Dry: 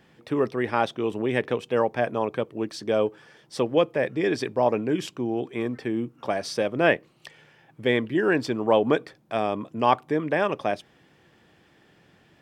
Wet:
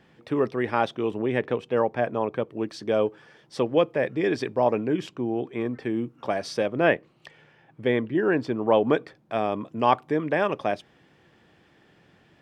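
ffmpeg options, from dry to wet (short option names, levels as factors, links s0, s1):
-af "asetnsamples=n=441:p=0,asendcmd='1.11 lowpass f 2300;2.5 lowpass f 4400;4.88 lowpass f 2500;5.82 lowpass f 5400;6.66 lowpass f 2700;7.88 lowpass f 1600;8.67 lowpass f 3500;9.52 lowpass f 5700',lowpass=f=4900:p=1"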